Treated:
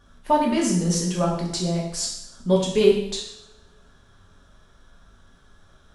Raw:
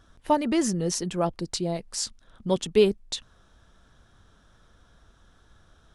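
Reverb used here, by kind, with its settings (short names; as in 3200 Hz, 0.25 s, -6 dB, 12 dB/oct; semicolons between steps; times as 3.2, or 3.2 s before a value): two-slope reverb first 0.74 s, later 2 s, from -26 dB, DRR -3.5 dB; gain -1.5 dB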